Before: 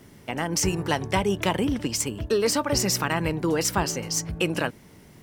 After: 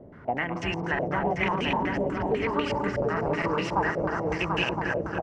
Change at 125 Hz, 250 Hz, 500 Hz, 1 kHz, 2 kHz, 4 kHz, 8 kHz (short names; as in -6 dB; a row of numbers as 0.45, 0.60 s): -3.0 dB, -2.5 dB, -1.0 dB, +2.0 dB, +2.0 dB, -6.5 dB, under -20 dB